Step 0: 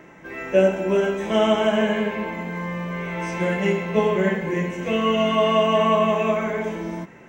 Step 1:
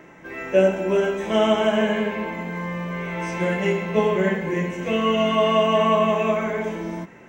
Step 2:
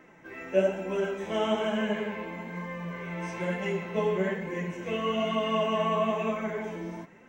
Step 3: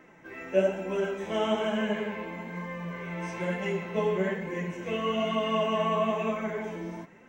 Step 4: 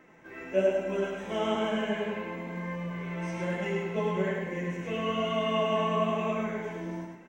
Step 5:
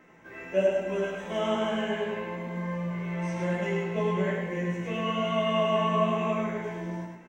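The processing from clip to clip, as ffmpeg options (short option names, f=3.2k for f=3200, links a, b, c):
-af "bandreject=f=50:t=h:w=6,bandreject=f=100:t=h:w=6,bandreject=f=150:t=h:w=6,bandreject=f=200:t=h:w=6"
-af "flanger=delay=3.8:depth=8.1:regen=36:speed=1.1:shape=sinusoidal,volume=-4.5dB"
-af anull
-af "aecho=1:1:103|206|309|412:0.668|0.214|0.0684|0.0219,volume=-2.5dB"
-filter_complex "[0:a]asplit=2[a][b];[b]adelay=17,volume=-5dB[c];[a][c]amix=inputs=2:normalize=0"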